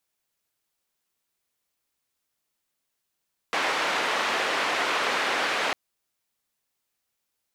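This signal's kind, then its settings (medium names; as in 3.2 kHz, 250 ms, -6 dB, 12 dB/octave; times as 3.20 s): noise band 410–2200 Hz, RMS -26 dBFS 2.20 s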